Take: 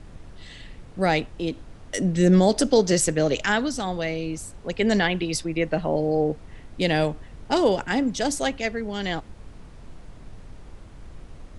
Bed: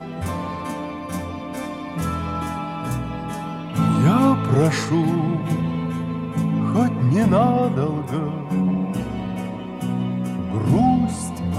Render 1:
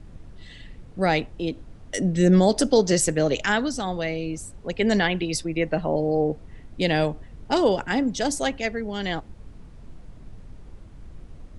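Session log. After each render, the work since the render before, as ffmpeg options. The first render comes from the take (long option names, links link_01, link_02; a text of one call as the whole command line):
ffmpeg -i in.wav -af "afftdn=noise_reduction=6:noise_floor=-45" out.wav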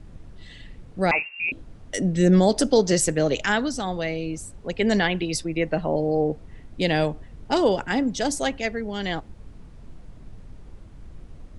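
ffmpeg -i in.wav -filter_complex "[0:a]asettb=1/sr,asplit=3[link_01][link_02][link_03];[link_01]atrim=end=1.114[link_04];[link_02]atrim=start=1.11:end=1.52,asetpts=PTS-STARTPTS,afade=type=in:duration=0.004:curve=qsin,afade=type=out:start_time=0.406:duration=0.004:curve=qsin,lowpass=frequency=2400:width_type=q:width=0.5098,lowpass=frequency=2400:width_type=q:width=0.6013,lowpass=frequency=2400:width_type=q:width=0.9,lowpass=frequency=2400:width_type=q:width=2.563,afreqshift=-2800[link_05];[link_03]atrim=start=1.516[link_06];[link_04][link_05]acrossfade=duration=0.004:curve1=hsin:curve2=qsin[link_07];[link_07][link_06]acrossfade=duration=0.004:curve1=qsin:curve2=hsin" out.wav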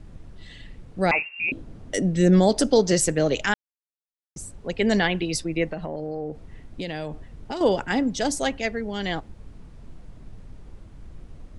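ffmpeg -i in.wav -filter_complex "[0:a]asettb=1/sr,asplit=3[link_01][link_02][link_03];[link_01]atrim=end=1.364[link_04];[link_02]atrim=start=1.36:end=2,asetpts=PTS-STARTPTS,afade=type=in:duration=0.004:curve=qsin,afade=type=out:start_time=0.636:duration=0.004:curve=qsin,equalizer=frequency=260:width_type=o:width=2.8:gain=6.5[link_05];[link_03]atrim=start=1.996[link_06];[link_04][link_05]acrossfade=duration=0.004:curve1=hsin:curve2=qsin[link_07];[link_07][link_06]acrossfade=duration=0.004:curve1=qsin:curve2=hsin,asettb=1/sr,asplit=3[link_08][link_09][link_10];[link_08]atrim=end=5.644[link_11];[link_09]atrim=start=5.64:end=7.61,asetpts=PTS-STARTPTS,afade=type=in:duration=0.004:curve=qsin,afade=type=out:start_time=1.966:duration=0.004:curve=qsin,acompressor=threshold=-27dB:ratio=6:attack=3.2:release=140:knee=1:detection=peak[link_12];[link_10]atrim=start=7.606[link_13];[link_11][link_12]acrossfade=duration=0.004:curve1=hsin:curve2=qsin[link_14];[link_14][link_13]acrossfade=duration=0.004:curve1=qsin:curve2=hsin,asplit=3[link_15][link_16][link_17];[link_15]atrim=end=3.54,asetpts=PTS-STARTPTS,afade=type=out:start_time=3.536:duration=0.004:curve=hsin[link_18];[link_16]atrim=start=3.54:end=4.36,asetpts=PTS-STARTPTS,volume=0[link_19];[link_17]atrim=start=4.36,asetpts=PTS-STARTPTS,afade=type=in:duration=0.004:curve=hsin[link_20];[link_18][link_19][link_20]concat=n=3:v=0:a=1" out.wav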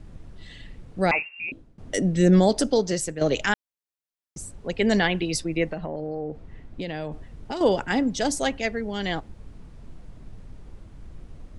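ffmpeg -i in.wav -filter_complex "[0:a]asettb=1/sr,asplit=3[link_01][link_02][link_03];[link_01]atrim=end=5.784[link_04];[link_02]atrim=start=5.78:end=7.12,asetpts=PTS-STARTPTS,afade=type=in:duration=0.004:curve=qsin,afade=type=out:start_time=1.336:duration=0.004:curve=qsin,lowpass=frequency=3300:poles=1[link_05];[link_03]atrim=start=7.116[link_06];[link_04][link_05]acrossfade=duration=0.004:curve1=hsin:curve2=qsin[link_07];[link_07][link_06]acrossfade=duration=0.004:curve1=qsin:curve2=hsin,asplit=3[link_08][link_09][link_10];[link_08]atrim=end=1.78,asetpts=PTS-STARTPTS,afade=type=out:start_time=1.04:duration=0.74:silence=0.0944061[link_11];[link_09]atrim=start=1.78:end=3.21,asetpts=PTS-STARTPTS,afade=type=in:duration=0.004:curve=hsin:silence=0.0944061,afade=type=out:start_time=0.6:duration=0.83:silence=0.298538[link_12];[link_10]atrim=start=3.21,asetpts=PTS-STARTPTS,afade=type=in:duration=0.004:curve=hsin:silence=0.298538[link_13];[link_11][link_12][link_13]concat=n=3:v=0:a=1" out.wav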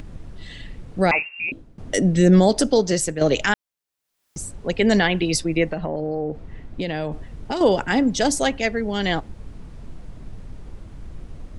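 ffmpeg -i in.wav -filter_complex "[0:a]asplit=2[link_01][link_02];[link_02]alimiter=limit=-15.5dB:level=0:latency=1:release=244,volume=-1dB[link_03];[link_01][link_03]amix=inputs=2:normalize=0,acompressor=mode=upward:threshold=-35dB:ratio=2.5" out.wav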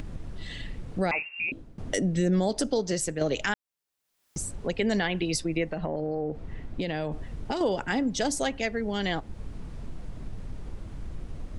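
ffmpeg -i in.wav -af "acompressor=threshold=-30dB:ratio=2" out.wav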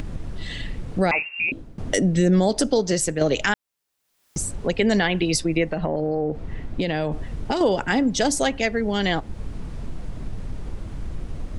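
ffmpeg -i in.wav -af "volume=6.5dB" out.wav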